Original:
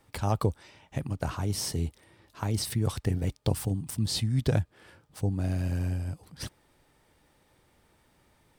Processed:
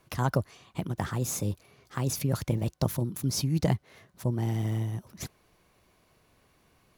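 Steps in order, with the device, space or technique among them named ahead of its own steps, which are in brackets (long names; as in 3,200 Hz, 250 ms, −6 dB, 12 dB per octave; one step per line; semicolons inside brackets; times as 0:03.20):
nightcore (speed change +23%)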